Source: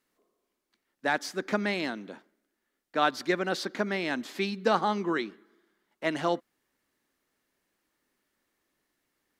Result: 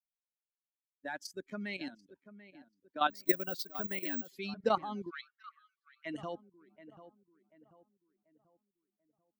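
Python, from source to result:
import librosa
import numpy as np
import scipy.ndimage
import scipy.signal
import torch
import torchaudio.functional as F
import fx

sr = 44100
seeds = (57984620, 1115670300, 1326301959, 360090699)

y = fx.bin_expand(x, sr, power=2.0)
y = fx.level_steps(y, sr, step_db=13)
y = fx.echo_filtered(y, sr, ms=738, feedback_pct=40, hz=1600.0, wet_db=-14.0)
y = fx.resample_bad(y, sr, factor=2, down='filtered', up='zero_stuff', at=(3.1, 4.31))
y = fx.brickwall_bandpass(y, sr, low_hz=1100.0, high_hz=6500.0, at=(5.09, 6.05), fade=0.02)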